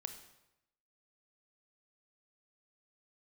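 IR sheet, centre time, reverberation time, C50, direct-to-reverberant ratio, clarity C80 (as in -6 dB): 14 ms, 0.90 s, 9.5 dB, 7.0 dB, 11.5 dB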